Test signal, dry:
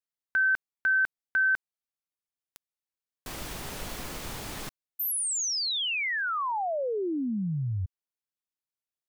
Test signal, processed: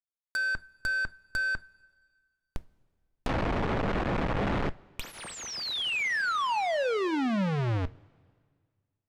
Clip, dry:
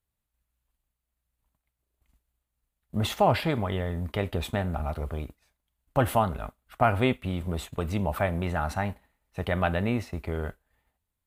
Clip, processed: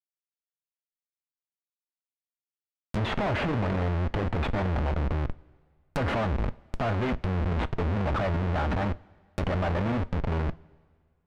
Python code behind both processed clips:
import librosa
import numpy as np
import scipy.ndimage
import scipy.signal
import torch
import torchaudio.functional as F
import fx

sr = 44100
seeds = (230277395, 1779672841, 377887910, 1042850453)

y = fx.schmitt(x, sr, flips_db=-36.0)
y = fx.env_lowpass_down(y, sr, base_hz=2200.0, full_db=-29.5)
y = fx.rev_double_slope(y, sr, seeds[0], early_s=0.23, late_s=1.9, knee_db=-18, drr_db=14.0)
y = y * librosa.db_to_amplitude(4.0)